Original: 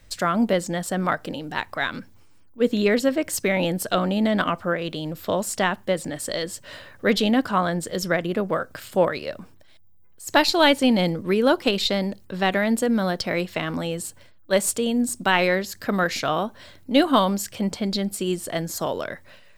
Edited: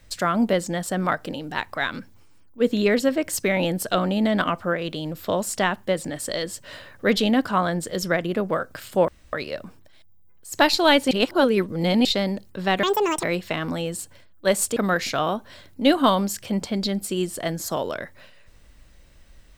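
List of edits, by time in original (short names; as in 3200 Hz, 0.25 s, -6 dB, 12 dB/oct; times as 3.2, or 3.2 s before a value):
9.08 insert room tone 0.25 s
10.86–11.8 reverse
12.58–13.29 speed 176%
14.82–15.86 cut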